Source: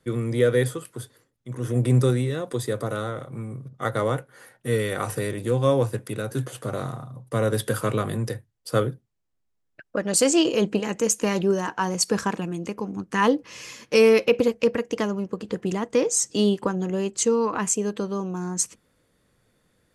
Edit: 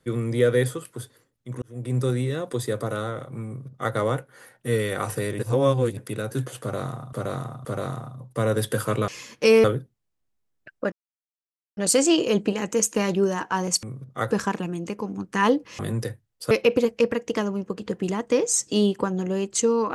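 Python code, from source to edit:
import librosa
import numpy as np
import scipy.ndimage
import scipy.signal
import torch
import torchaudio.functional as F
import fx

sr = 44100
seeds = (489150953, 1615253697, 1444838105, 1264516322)

y = fx.edit(x, sr, fx.fade_in_span(start_s=1.62, length_s=0.68),
    fx.duplicate(start_s=3.47, length_s=0.48, to_s=12.1),
    fx.reverse_span(start_s=5.39, length_s=0.58),
    fx.repeat(start_s=6.61, length_s=0.52, count=3),
    fx.swap(start_s=8.04, length_s=0.72, other_s=13.58, other_length_s=0.56),
    fx.insert_silence(at_s=10.04, length_s=0.85), tone=tone)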